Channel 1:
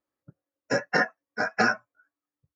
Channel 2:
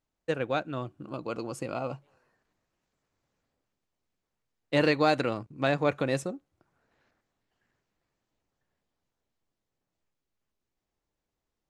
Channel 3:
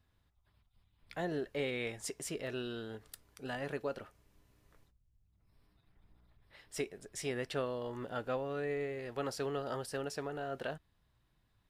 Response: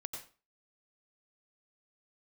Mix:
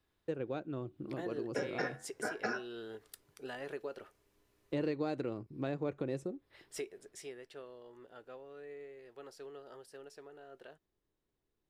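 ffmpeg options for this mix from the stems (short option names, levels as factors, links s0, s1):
-filter_complex "[0:a]acompressor=threshold=0.0562:ratio=2,flanger=delay=4.6:depth=7.1:regen=-83:speed=0.47:shape=triangular,adelay=850,volume=1.12[s0];[1:a]lowshelf=f=390:g=9.5,volume=0.335[s1];[2:a]lowshelf=f=440:g=-9.5,volume=0.841,afade=t=out:st=6.83:d=0.54:silence=0.237137[s2];[s0][s1][s2]amix=inputs=3:normalize=0,equalizer=f=380:t=o:w=0.73:g=10,acompressor=threshold=0.01:ratio=2"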